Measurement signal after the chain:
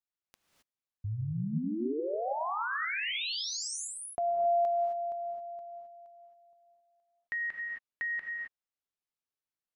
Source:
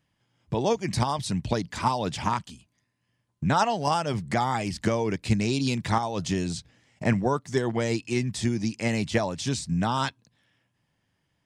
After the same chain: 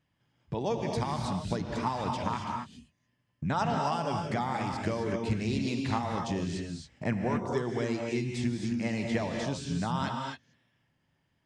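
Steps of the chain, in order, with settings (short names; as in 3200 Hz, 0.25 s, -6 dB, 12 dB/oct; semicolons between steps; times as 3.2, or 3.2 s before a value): high shelf 7100 Hz -11.5 dB; non-linear reverb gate 0.29 s rising, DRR 2 dB; in parallel at 0 dB: compressor, threshold -35 dBFS; on the sum: gain -8.5 dB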